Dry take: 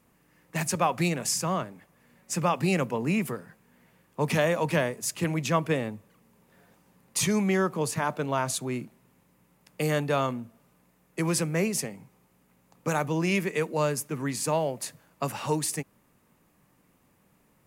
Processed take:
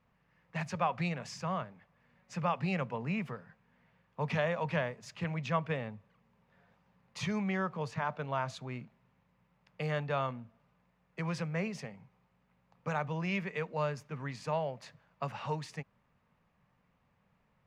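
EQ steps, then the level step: air absorption 220 m; bell 320 Hz -14.5 dB 0.73 oct; -4.0 dB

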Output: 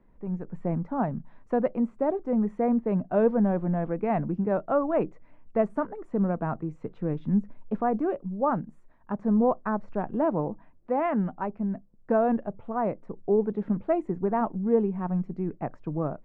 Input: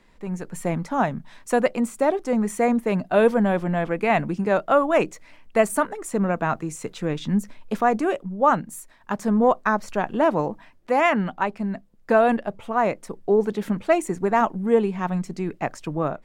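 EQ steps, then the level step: LPF 1200 Hz 12 dB/oct; low shelf 400 Hz +7.5 dB; -8.0 dB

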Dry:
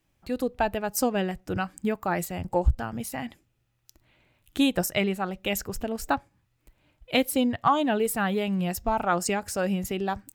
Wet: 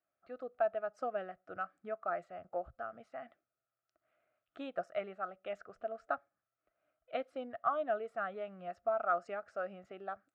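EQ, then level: double band-pass 930 Hz, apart 0.95 oct; air absorption 100 m; -2.0 dB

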